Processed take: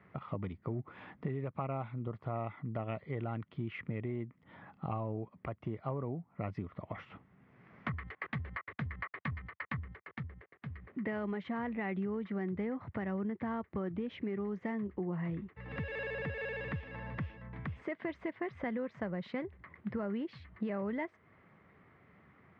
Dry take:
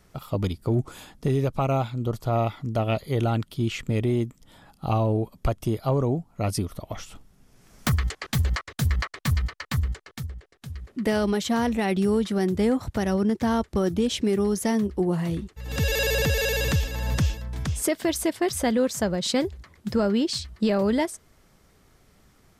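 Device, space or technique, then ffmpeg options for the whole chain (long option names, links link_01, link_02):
bass amplifier: -af "acompressor=threshold=-36dB:ratio=3,highpass=frequency=84:width=0.5412,highpass=frequency=84:width=1.3066,equalizer=frequency=180:width_type=q:width=4:gain=3,equalizer=frequency=1100:width_type=q:width=4:gain=5,equalizer=frequency=2000:width_type=q:width=4:gain=8,lowpass=frequency=2400:width=0.5412,lowpass=frequency=2400:width=1.3066,volume=-3dB"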